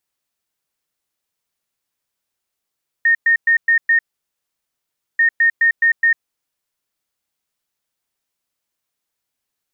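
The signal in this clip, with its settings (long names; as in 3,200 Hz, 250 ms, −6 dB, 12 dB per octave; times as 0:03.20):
beeps in groups sine 1,840 Hz, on 0.10 s, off 0.11 s, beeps 5, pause 1.20 s, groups 2, −10 dBFS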